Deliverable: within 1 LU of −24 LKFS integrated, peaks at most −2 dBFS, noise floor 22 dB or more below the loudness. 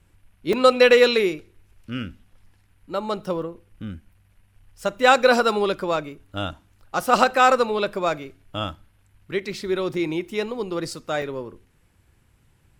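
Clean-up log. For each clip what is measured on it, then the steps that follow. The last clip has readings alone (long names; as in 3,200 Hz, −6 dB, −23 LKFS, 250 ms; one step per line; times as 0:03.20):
number of dropouts 4; longest dropout 2.4 ms; integrated loudness −21.5 LKFS; sample peak −3.0 dBFS; target loudness −24.0 LKFS
→ repair the gap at 0:00.53/0:03.42/0:09.94/0:11.22, 2.4 ms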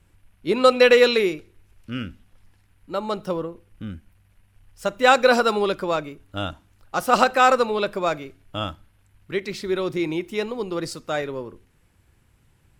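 number of dropouts 0; integrated loudness −21.5 LKFS; sample peak −3.0 dBFS; target loudness −24.0 LKFS
→ level −2.5 dB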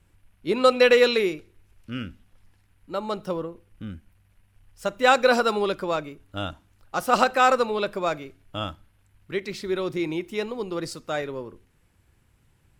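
integrated loudness −24.0 LKFS; sample peak −5.5 dBFS; background noise floor −63 dBFS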